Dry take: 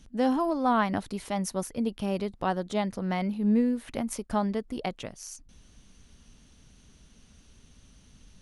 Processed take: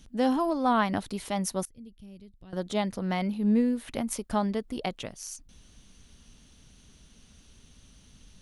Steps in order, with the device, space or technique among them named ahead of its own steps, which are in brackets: presence and air boost (peaking EQ 3.5 kHz +3 dB 0.77 oct; treble shelf 9.8 kHz +6 dB); 1.65–2.53 s: amplifier tone stack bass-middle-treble 10-0-1

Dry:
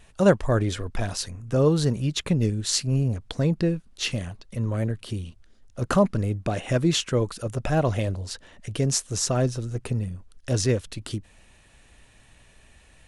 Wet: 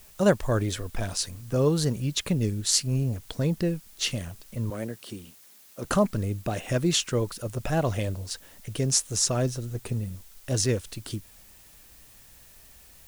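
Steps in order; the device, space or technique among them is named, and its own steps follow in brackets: plain cassette with noise reduction switched in (tape noise reduction on one side only decoder only; wow and flutter; white noise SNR 31 dB); 4.70–5.85 s: high-pass 200 Hz 12 dB/octave; treble shelf 4.5 kHz +7.5 dB; trim -3 dB

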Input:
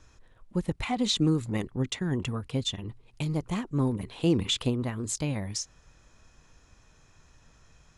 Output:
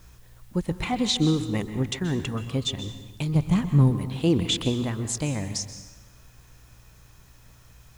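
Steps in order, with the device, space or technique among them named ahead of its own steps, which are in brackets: video cassette with head-switching buzz (mains buzz 60 Hz, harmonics 3, -56 dBFS -8 dB/octave; white noise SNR 34 dB); 3.35–3.91 s: resonant low shelf 230 Hz +7 dB, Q 1.5; plate-style reverb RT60 1.1 s, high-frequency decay 0.85×, pre-delay 115 ms, DRR 10 dB; trim +2.5 dB

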